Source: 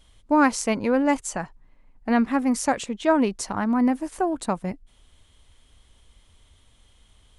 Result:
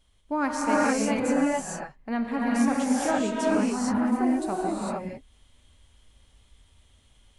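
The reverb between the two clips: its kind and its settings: gated-style reverb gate 480 ms rising, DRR -6 dB; trim -9 dB

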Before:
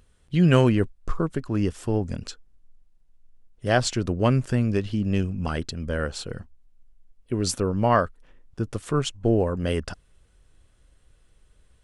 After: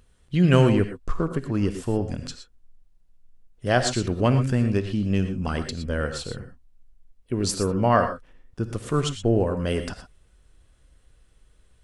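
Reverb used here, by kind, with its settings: gated-style reverb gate 140 ms rising, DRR 7.5 dB

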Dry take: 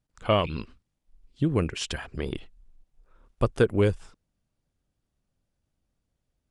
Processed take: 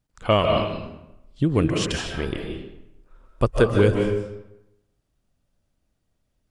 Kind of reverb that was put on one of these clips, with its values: algorithmic reverb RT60 0.89 s, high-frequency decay 0.7×, pre-delay 110 ms, DRR 2 dB; trim +3.5 dB

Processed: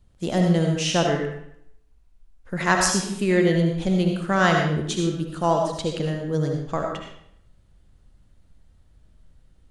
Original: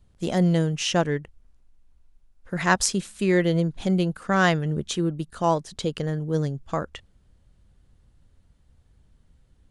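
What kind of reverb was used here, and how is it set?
algorithmic reverb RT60 0.72 s, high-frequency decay 0.85×, pre-delay 35 ms, DRR 1.5 dB

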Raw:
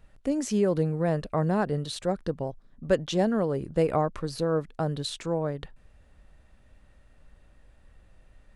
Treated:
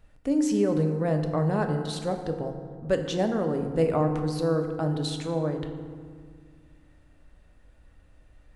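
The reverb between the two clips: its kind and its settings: FDN reverb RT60 1.9 s, low-frequency decay 1.4×, high-frequency decay 0.5×, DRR 4.5 dB; trim -1.5 dB

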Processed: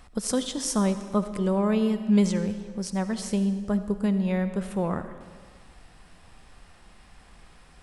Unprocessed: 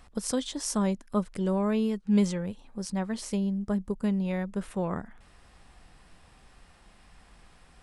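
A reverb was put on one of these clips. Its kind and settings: algorithmic reverb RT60 1.7 s, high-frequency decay 0.9×, pre-delay 30 ms, DRR 10.5 dB; trim +3 dB

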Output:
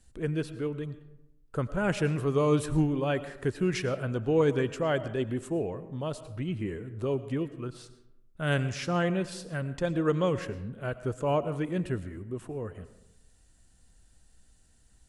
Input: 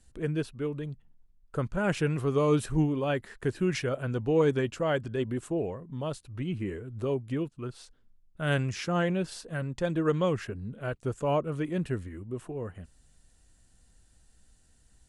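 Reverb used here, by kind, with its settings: algorithmic reverb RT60 0.9 s, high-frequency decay 0.5×, pre-delay 65 ms, DRR 13.5 dB

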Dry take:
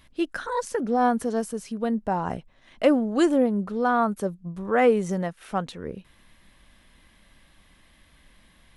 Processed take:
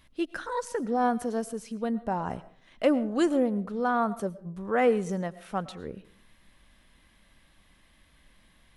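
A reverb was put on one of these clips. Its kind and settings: algorithmic reverb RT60 0.45 s, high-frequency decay 0.6×, pre-delay 70 ms, DRR 17 dB; trim -4 dB

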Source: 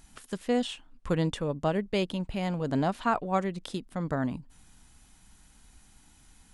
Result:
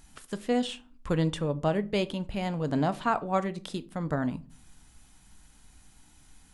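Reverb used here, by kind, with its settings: simulated room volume 230 m³, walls furnished, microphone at 0.39 m

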